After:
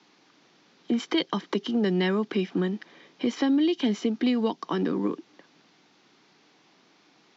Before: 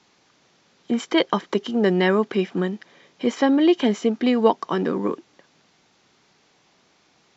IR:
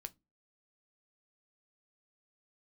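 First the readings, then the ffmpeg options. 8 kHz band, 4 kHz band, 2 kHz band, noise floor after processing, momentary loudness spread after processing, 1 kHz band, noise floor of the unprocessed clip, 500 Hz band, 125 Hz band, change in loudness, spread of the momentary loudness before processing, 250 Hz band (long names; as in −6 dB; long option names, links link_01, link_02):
can't be measured, −3.0 dB, −6.5 dB, −62 dBFS, 7 LU, −9.0 dB, −61 dBFS, −8.0 dB, −3.0 dB, −5.0 dB, 9 LU, −4.0 dB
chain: -filter_complex "[0:a]highpass=frequency=120:width=0.5412,highpass=frequency=120:width=1.3066,equalizer=frequency=130:width_type=q:width=4:gain=-4,equalizer=frequency=300:width_type=q:width=4:gain=6,equalizer=frequency=580:width_type=q:width=4:gain=-3,lowpass=frequency=5900:width=0.5412,lowpass=frequency=5900:width=1.3066,acrossover=split=190|3000[link_01][link_02][link_03];[link_02]acompressor=threshold=-26dB:ratio=6[link_04];[link_01][link_04][link_03]amix=inputs=3:normalize=0"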